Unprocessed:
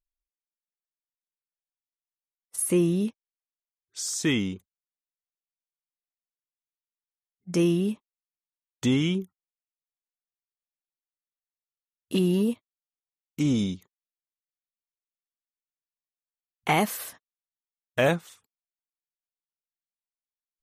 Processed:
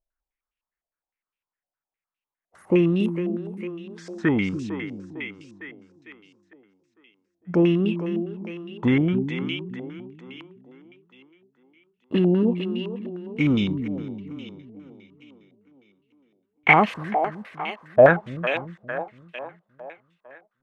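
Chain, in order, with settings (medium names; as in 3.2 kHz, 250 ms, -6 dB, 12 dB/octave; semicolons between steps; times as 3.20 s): two-band feedback delay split 310 Hz, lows 285 ms, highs 453 ms, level -8 dB; step-sequenced low-pass 9.8 Hz 680–2700 Hz; trim +3 dB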